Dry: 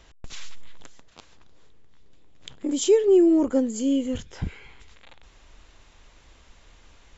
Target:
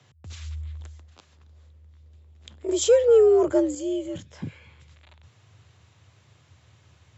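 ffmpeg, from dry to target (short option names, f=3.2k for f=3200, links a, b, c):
-filter_complex "[0:a]afreqshift=77,asettb=1/sr,asplit=3[a][b][c];[a]atrim=end=2.684[d];[b]atrim=start=2.68:end=3.75,asetpts=PTS-STARTPTS,afade=t=in:d=0.004:c=qsin,afade=t=out:st=1.066:d=0.004:c=qsin,acontrast=68[e];[c]atrim=start=3.746[f];[d][e]acrossfade=d=0.004:c1=hsin:c2=qsin[g];[g][f]acrossfade=d=0.004:c1=qsin:c2=hsin,volume=-5dB"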